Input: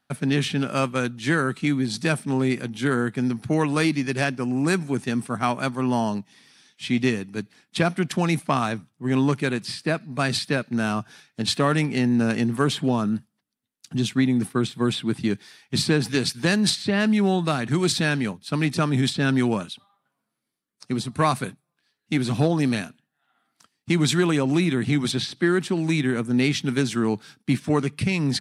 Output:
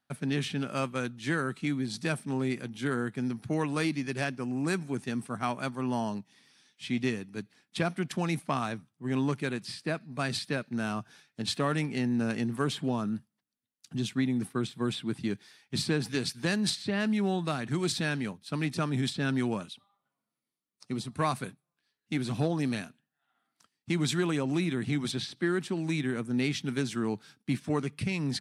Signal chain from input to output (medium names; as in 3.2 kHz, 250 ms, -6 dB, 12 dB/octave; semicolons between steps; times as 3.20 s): 19.62–21.05 s: band-stop 1.6 kHz, Q 8.8; trim -8 dB